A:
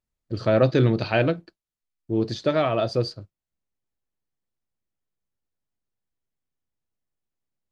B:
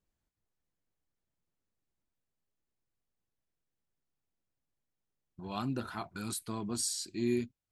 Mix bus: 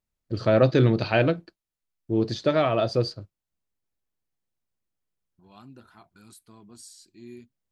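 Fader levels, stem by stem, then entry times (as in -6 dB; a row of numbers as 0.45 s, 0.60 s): 0.0 dB, -13.0 dB; 0.00 s, 0.00 s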